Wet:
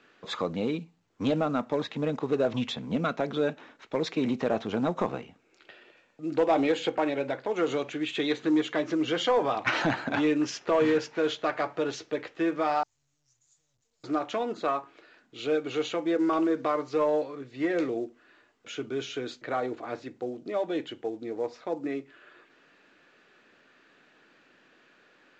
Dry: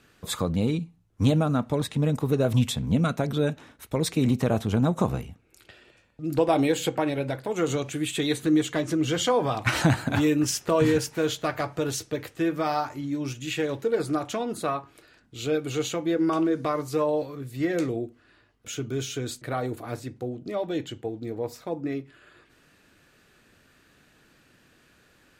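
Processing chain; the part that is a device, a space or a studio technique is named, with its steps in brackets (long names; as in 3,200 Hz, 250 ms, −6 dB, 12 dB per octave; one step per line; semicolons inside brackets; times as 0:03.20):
0:12.83–0:14.04: inverse Chebyshev band-stop filter 190–3,000 Hz, stop band 60 dB
telephone (band-pass filter 300–3,400 Hz; soft clipping −16 dBFS, distortion −20 dB; level +1 dB; mu-law 128 kbit/s 16,000 Hz)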